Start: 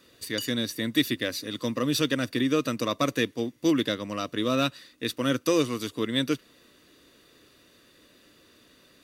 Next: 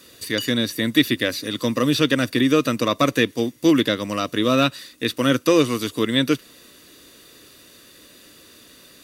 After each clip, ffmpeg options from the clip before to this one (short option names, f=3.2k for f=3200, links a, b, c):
-filter_complex "[0:a]acrossover=split=3700[a][b];[b]acompressor=threshold=-47dB:ratio=4:attack=1:release=60[c];[a][c]amix=inputs=2:normalize=0,equalizer=f=12k:w=0.35:g=9.5,volume=7dB"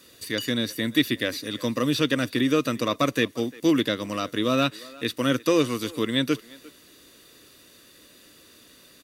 -filter_complex "[0:a]asplit=2[a][b];[b]adelay=350,highpass=300,lowpass=3.4k,asoftclip=type=hard:threshold=-12.5dB,volume=-20dB[c];[a][c]amix=inputs=2:normalize=0,volume=-4.5dB"